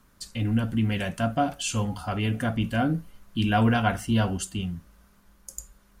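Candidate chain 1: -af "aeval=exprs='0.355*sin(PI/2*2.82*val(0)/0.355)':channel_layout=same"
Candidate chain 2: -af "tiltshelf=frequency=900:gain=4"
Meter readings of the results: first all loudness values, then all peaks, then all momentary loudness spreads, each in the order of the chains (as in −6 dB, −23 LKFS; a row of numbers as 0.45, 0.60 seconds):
−16.5, −24.0 LKFS; −9.0, −8.5 dBFS; 14, 10 LU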